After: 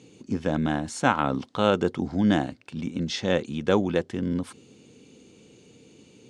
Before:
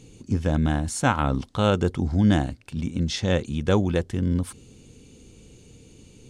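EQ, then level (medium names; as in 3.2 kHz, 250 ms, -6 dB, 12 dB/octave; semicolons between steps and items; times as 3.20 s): high-pass 200 Hz 12 dB/octave; distance through air 55 m; treble shelf 9.2 kHz -3.5 dB; +1.0 dB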